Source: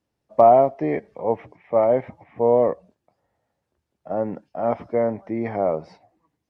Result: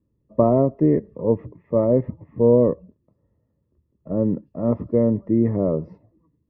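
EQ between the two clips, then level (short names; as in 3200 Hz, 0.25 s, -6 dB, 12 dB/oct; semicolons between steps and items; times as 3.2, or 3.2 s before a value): running mean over 58 samples; low shelf 190 Hz +5 dB; +8.5 dB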